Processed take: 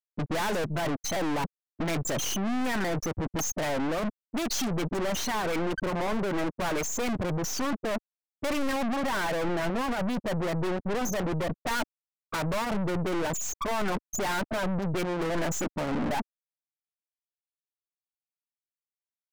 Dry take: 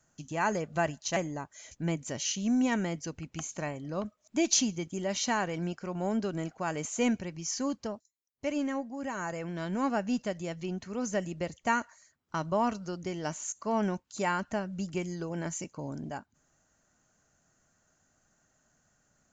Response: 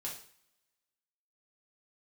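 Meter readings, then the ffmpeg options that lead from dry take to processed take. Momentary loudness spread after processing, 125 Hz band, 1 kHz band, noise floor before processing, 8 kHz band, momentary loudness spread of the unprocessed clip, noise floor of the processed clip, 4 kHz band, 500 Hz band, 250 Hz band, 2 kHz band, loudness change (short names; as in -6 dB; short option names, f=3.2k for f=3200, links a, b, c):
3 LU, +4.5 dB, +3.0 dB, -74 dBFS, +0.5 dB, 9 LU, under -85 dBFS, +3.5 dB, +4.0 dB, +1.5 dB, +4.0 dB, +2.5 dB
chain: -filter_complex "[0:a]afftfilt=real='re*gte(hypot(re,im),0.0316)':imag='im*gte(hypot(re,im),0.0316)':win_size=1024:overlap=0.75,apsyclip=19.5dB,areverse,acompressor=threshold=-21dB:ratio=6,areverse,asplit=2[a][b];[b]highpass=f=720:p=1,volume=26dB,asoftclip=type=tanh:threshold=-12.5dB[c];[a][c]amix=inputs=2:normalize=0,lowpass=f=3k:p=1,volume=-6dB,asubboost=boost=4.5:cutoff=68,aeval=exprs='(tanh(70.8*val(0)+0.55)-tanh(0.55))/70.8':c=same,adynamicequalizer=threshold=0.002:dfrequency=2800:dqfactor=0.7:tfrequency=2800:tqfactor=0.7:attack=5:release=100:ratio=0.375:range=3:mode=cutabove:tftype=highshelf,volume=9dB"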